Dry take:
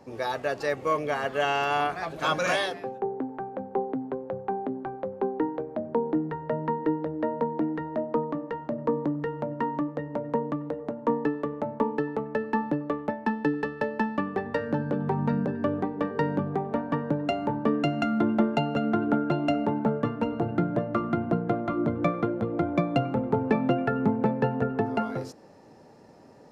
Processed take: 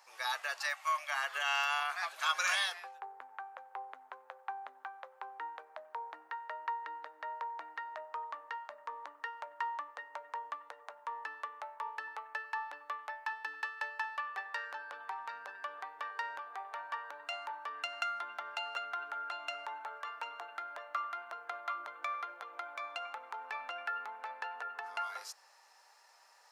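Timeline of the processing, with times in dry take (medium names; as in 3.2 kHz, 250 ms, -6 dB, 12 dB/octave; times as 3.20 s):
0.60–1.15 s: spectral selection erased 220–540 Hz
whole clip: peak limiter -19 dBFS; high-pass 1 kHz 24 dB/octave; treble shelf 4.5 kHz +6.5 dB; trim -1 dB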